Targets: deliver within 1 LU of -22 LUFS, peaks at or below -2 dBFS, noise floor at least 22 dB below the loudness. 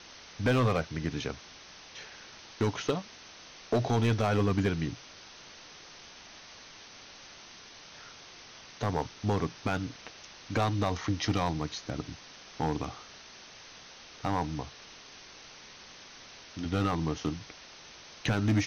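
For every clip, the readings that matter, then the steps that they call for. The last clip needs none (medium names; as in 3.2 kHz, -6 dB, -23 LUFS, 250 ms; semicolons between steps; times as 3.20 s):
clipped samples 0.7%; clipping level -20.5 dBFS; noise floor -51 dBFS; noise floor target -54 dBFS; loudness -31.5 LUFS; peak level -20.5 dBFS; loudness target -22.0 LUFS
-> clip repair -20.5 dBFS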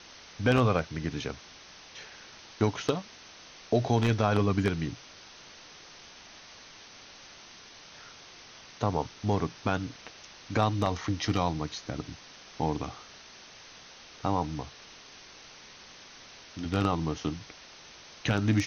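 clipped samples 0.0%; noise floor -51 dBFS; noise floor target -52 dBFS
-> noise print and reduce 6 dB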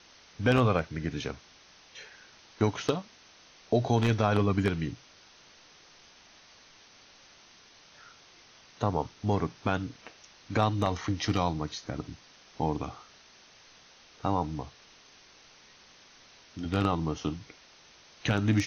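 noise floor -57 dBFS; loudness -30.0 LUFS; peak level -11.5 dBFS; loudness target -22.0 LUFS
-> trim +8 dB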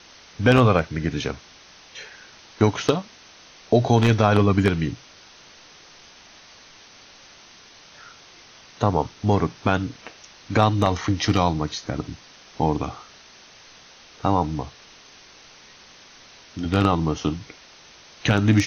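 loudness -22.0 LUFS; peak level -3.5 dBFS; noise floor -49 dBFS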